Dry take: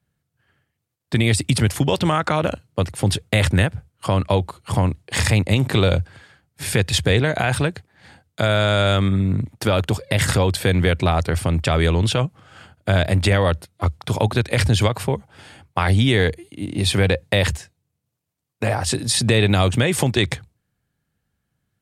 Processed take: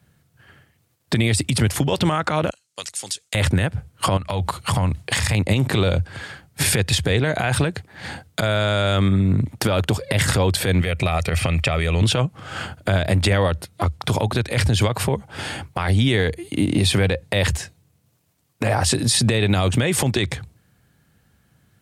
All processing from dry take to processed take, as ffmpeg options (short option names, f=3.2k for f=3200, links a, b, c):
-filter_complex "[0:a]asettb=1/sr,asplit=3[a][b][c];[a]atrim=end=2.504[d];[b]atrim=start=2.5:end=3.35,asetpts=PTS-STARTPTS,afade=t=in:d=0.004:c=qsin,afade=t=out:st=0.846:d=0.004:c=qsin,bandpass=f=6.8k:t=q:w=1.9,acompressor=threshold=-38dB:ratio=5:attack=3.2:release=140:knee=1:detection=peak[e];[c]atrim=start=3.346[f];[d][e]acrossfade=d=0.004:c1=hsin:c2=qsin[g];[g][f]acrossfade=d=0.004:c1=qsin:c2=hsin,asettb=1/sr,asplit=3[h][i][j];[h]atrim=end=4.174[k];[i]atrim=start=4.17:end=5.35,asetpts=PTS-STARTPTS,afade=t=in:d=0.004:c=qsin,afade=t=out:st=1.176:d=0.004:c=qsin,acompressor=threshold=-28dB:ratio=5:attack=3.2:release=140:knee=1:detection=peak,equalizer=f=360:w=1.2:g=-7.5[l];[j]atrim=start=5.346[m];[k][l]acrossfade=d=0.004:c1=hsin:c2=qsin[n];[n][m]acrossfade=d=0.004:c1=qsin:c2=hsin,asettb=1/sr,asplit=3[o][p][q];[o]atrim=end=10.814[r];[p]atrim=start=10.81:end=12.02,asetpts=PTS-STARTPTS,afade=t=in:d=0.004:c=qsin,afade=t=out:st=1.206:d=0.004:c=qsin,equalizer=f=2.4k:t=o:w=0.57:g=9.5,aecho=1:1:1.6:0.39,atrim=end_sample=53361,acrossover=split=1500|6900[s][t][u];[s]acompressor=threshold=-26dB:ratio=4[v];[t]acompressor=threshold=-33dB:ratio=4[w];[u]acompressor=threshold=-48dB:ratio=4[x];[v][w][x]amix=inputs=3:normalize=0[y];[q]atrim=start=12.016[z];[r][y]acrossfade=d=0.004:c1=hsin:c2=qsin[aa];[aa][z]acrossfade=d=0.004:c1=qsin:c2=hsin,highpass=47,acompressor=threshold=-30dB:ratio=6,alimiter=level_in=22dB:limit=-1dB:release=50:level=0:latency=1,volume=-7.5dB"